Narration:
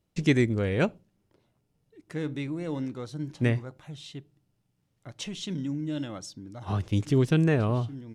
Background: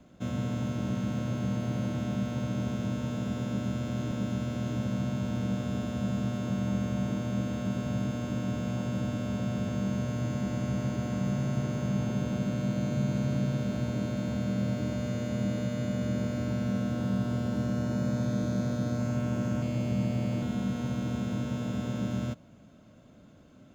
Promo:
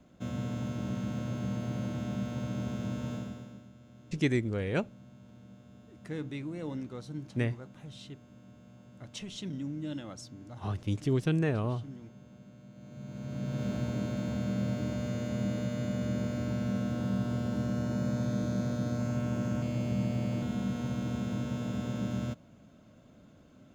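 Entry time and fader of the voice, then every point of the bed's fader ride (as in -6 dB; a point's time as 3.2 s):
3.95 s, -5.5 dB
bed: 3.14 s -3.5 dB
3.7 s -22.5 dB
12.71 s -22.5 dB
13.65 s -2 dB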